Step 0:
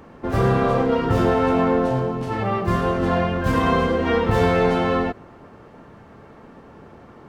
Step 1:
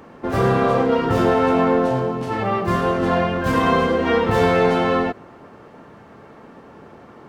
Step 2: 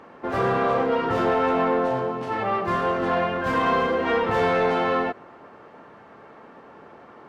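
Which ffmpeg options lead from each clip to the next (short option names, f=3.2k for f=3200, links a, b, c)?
-af "lowshelf=f=88:g=-12,volume=2.5dB"
-filter_complex "[0:a]asplit=2[a][b];[b]highpass=f=720:p=1,volume=12dB,asoftclip=type=tanh:threshold=-5dB[c];[a][c]amix=inputs=2:normalize=0,lowpass=f=2.1k:p=1,volume=-6dB,volume=-6dB"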